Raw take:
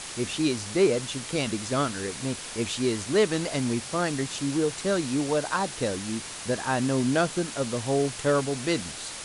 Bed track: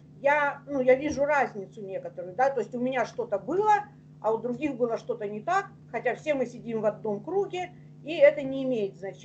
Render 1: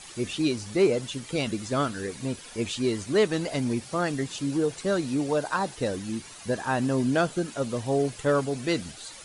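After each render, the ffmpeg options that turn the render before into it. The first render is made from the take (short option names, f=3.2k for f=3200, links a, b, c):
-af "afftdn=nr=11:nf=-38"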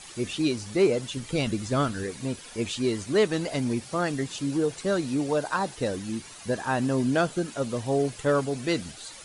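-filter_complex "[0:a]asettb=1/sr,asplit=3[a][b][c];[a]atrim=end=1.174[d];[b]atrim=start=1.17:end=2.04,asetpts=PTS-STARTPTS,afade=t=in:d=0.004:c=qsin,afade=t=out:st=0.866:d=0.004:c=qsin,lowshelf=f=110:g=10[e];[c]atrim=start=2.036[f];[d][e]acrossfade=d=0.004:c1=hsin:c2=qsin[g];[g][f]acrossfade=d=0.004:c1=qsin:c2=hsin"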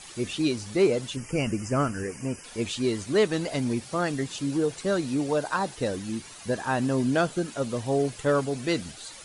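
-filter_complex "[0:a]asettb=1/sr,asplit=3[a][b][c];[a]atrim=end=1.164[d];[b]atrim=start=1.16:end=2.44,asetpts=PTS-STARTPTS,afade=t=in:d=0.004:c=qsin,afade=t=out:st=1.276:d=0.004:c=qsin,asuperstop=centerf=3800:order=12:qfactor=2.2[e];[c]atrim=start=2.436[f];[d][e]acrossfade=d=0.004:c1=hsin:c2=qsin[g];[g][f]acrossfade=d=0.004:c1=qsin:c2=hsin"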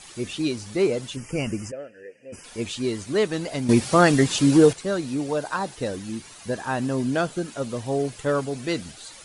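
-filter_complex "[0:a]asplit=3[a][b][c];[a]afade=t=out:st=1.7:d=0.02[d];[b]asplit=3[e][f][g];[e]bandpass=f=530:t=q:w=8,volume=0dB[h];[f]bandpass=f=1.84k:t=q:w=8,volume=-6dB[i];[g]bandpass=f=2.48k:t=q:w=8,volume=-9dB[j];[h][i][j]amix=inputs=3:normalize=0,afade=t=in:st=1.7:d=0.02,afade=t=out:st=2.32:d=0.02[k];[c]afade=t=in:st=2.32:d=0.02[l];[d][k][l]amix=inputs=3:normalize=0,asplit=3[m][n][o];[m]atrim=end=3.692[p];[n]atrim=start=3.688:end=4.732,asetpts=PTS-STARTPTS,volume=11dB[q];[o]atrim=start=4.728[r];[p][q]acrossfade=d=0.004:c1=hsin:c2=hsin[s];[s][r]acrossfade=d=0.004:c1=hsin:c2=hsin"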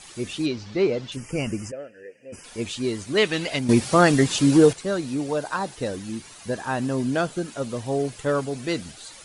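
-filter_complex "[0:a]asettb=1/sr,asplit=3[a][b][c];[a]atrim=end=0.464[d];[b]atrim=start=0.46:end=1.12,asetpts=PTS-STARTPTS,afade=t=in:d=0.004:c=qsin,afade=t=out:st=0.656:d=0.004:c=qsin,lowpass=f=5.3k:w=0.5412,lowpass=f=5.3k:w=1.3066[e];[c]atrim=start=1.116[f];[d][e]acrossfade=d=0.004:c1=hsin:c2=qsin[g];[g][f]acrossfade=d=0.004:c1=qsin:c2=hsin,asettb=1/sr,asplit=3[h][i][j];[h]atrim=end=3.174[k];[i]atrim=start=3.17:end=3.59,asetpts=PTS-STARTPTS,afade=t=in:d=0.004:c=qsin,afade=t=out:st=0.416:d=0.004:c=qsin,equalizer=f=2.7k:t=o:w=1.5:g=11[l];[j]atrim=start=3.586[m];[k][l]acrossfade=d=0.004:c1=hsin:c2=qsin[n];[n][m]acrossfade=d=0.004:c1=qsin:c2=hsin"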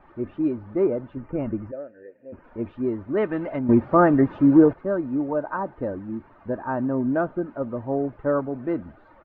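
-af "lowpass=f=1.4k:w=0.5412,lowpass=f=1.4k:w=1.3066,aecho=1:1:3.3:0.36"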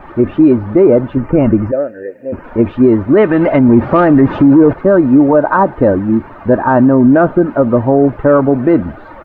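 -af "acontrast=37,alimiter=level_in=14dB:limit=-1dB:release=50:level=0:latency=1"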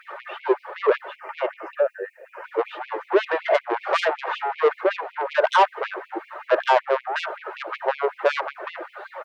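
-af "asoftclip=type=tanh:threshold=-9.5dB,afftfilt=real='re*gte(b*sr/1024,340*pow(2200/340,0.5+0.5*sin(2*PI*5.3*pts/sr)))':imag='im*gte(b*sr/1024,340*pow(2200/340,0.5+0.5*sin(2*PI*5.3*pts/sr)))':win_size=1024:overlap=0.75"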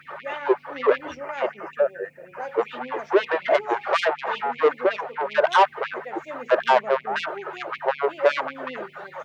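-filter_complex "[1:a]volume=-10.5dB[a];[0:a][a]amix=inputs=2:normalize=0"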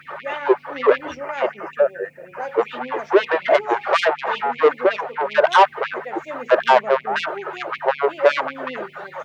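-af "volume=4dB"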